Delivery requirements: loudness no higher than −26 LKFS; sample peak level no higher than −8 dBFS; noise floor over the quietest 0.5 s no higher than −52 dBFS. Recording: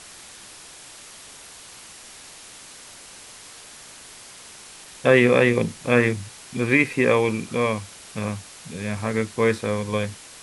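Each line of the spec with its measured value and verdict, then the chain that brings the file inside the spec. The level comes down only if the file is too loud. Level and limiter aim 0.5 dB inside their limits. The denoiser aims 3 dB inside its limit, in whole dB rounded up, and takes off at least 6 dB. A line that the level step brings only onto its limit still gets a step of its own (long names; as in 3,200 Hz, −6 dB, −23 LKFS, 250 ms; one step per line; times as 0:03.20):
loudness −22.0 LKFS: out of spec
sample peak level −3.5 dBFS: out of spec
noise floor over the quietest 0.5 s −44 dBFS: out of spec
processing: broadband denoise 7 dB, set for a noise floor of −44 dBFS
level −4.5 dB
brickwall limiter −8.5 dBFS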